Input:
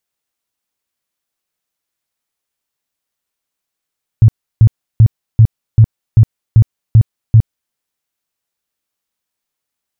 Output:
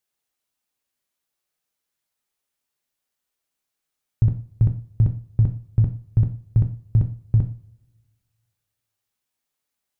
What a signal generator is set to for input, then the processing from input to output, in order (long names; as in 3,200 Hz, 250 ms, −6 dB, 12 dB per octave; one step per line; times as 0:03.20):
tone bursts 111 Hz, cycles 7, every 0.39 s, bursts 9, −1.5 dBFS
output level in coarse steps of 14 dB
coupled-rooms reverb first 0.38 s, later 1.7 s, from −27 dB, DRR 4 dB